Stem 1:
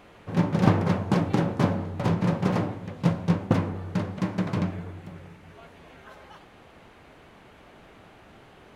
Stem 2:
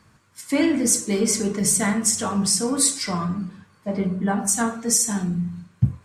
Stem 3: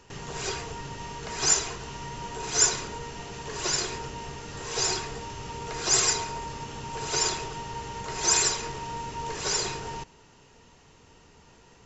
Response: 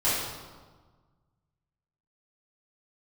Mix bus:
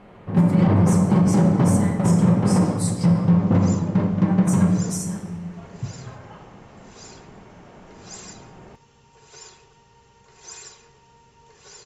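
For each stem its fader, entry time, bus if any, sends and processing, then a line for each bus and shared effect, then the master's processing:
+2.5 dB, 0.00 s, send −14.5 dB, low-pass filter 1,300 Hz 6 dB per octave; parametric band 190 Hz +8.5 dB 0.4 octaves
−14.0 dB, 0.00 s, send −17 dB, no processing
−16.5 dB, 2.20 s, no send, notch comb filter 320 Hz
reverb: on, RT60 1.4 s, pre-delay 5 ms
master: brickwall limiter −8.5 dBFS, peak gain reduction 10.5 dB

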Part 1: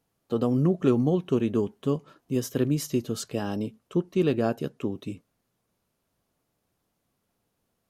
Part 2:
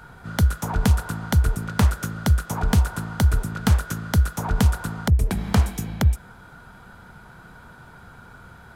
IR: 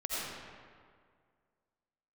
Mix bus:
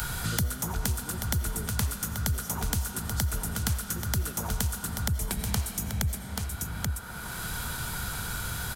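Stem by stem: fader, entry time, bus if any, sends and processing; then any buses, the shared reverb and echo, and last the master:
−9.0 dB, 0.00 s, no send, no echo send, no processing
+1.5 dB, 0.00 s, send −13 dB, echo send −9.5 dB, no processing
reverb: on, RT60 2.0 s, pre-delay 45 ms
echo: single-tap delay 833 ms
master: first-order pre-emphasis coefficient 0.8; multiband upward and downward compressor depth 100%

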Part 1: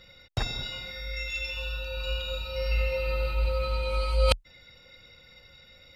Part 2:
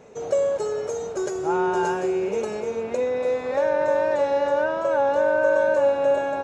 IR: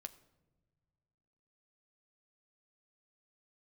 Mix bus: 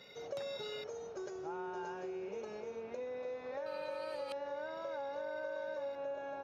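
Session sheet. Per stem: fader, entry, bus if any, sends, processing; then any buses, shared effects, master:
−3.5 dB, 0.00 s, muted 0:00.84–0:03.66, no send, high-pass filter 170 Hz 24 dB per octave; downward compressor 5 to 1, threshold −38 dBFS, peak gain reduction 17 dB
−14.0 dB, 0.00 s, no send, Butterworth low-pass 6,400 Hz 72 dB per octave; low-shelf EQ 370 Hz −3 dB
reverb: not used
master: downward compressor 3 to 1, threshold −40 dBFS, peak gain reduction 7.5 dB

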